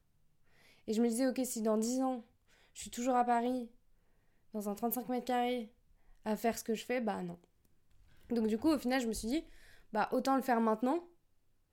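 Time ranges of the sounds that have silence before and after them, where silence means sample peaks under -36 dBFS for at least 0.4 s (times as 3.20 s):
0.88–2.16 s
2.80–3.62 s
4.55–5.62 s
6.26–7.32 s
8.31–9.40 s
9.94–10.99 s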